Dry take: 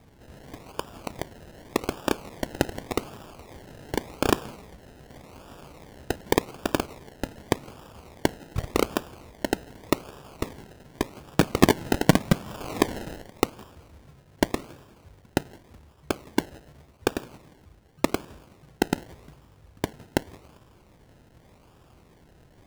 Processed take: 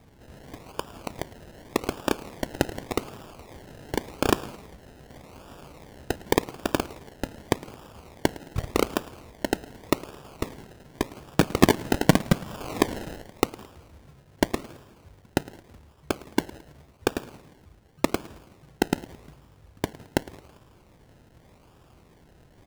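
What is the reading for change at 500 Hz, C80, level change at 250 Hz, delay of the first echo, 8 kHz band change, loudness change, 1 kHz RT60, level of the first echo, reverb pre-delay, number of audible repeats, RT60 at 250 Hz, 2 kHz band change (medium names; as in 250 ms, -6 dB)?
0.0 dB, no reverb, 0.0 dB, 109 ms, 0.0 dB, 0.0 dB, no reverb, -21.0 dB, no reverb, 2, no reverb, 0.0 dB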